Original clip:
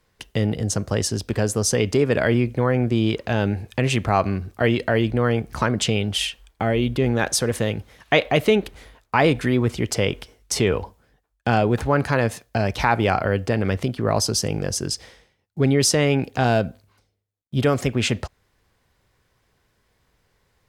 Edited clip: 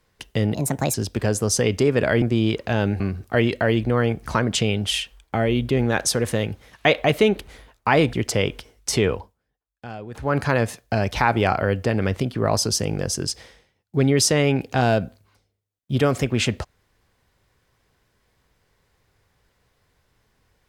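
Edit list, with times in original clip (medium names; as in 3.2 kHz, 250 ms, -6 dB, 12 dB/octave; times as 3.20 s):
0.54–1.08 s: speed 135%
2.36–2.82 s: delete
3.60–4.27 s: delete
9.40–9.76 s: delete
10.70–12.03 s: dip -16.5 dB, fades 0.29 s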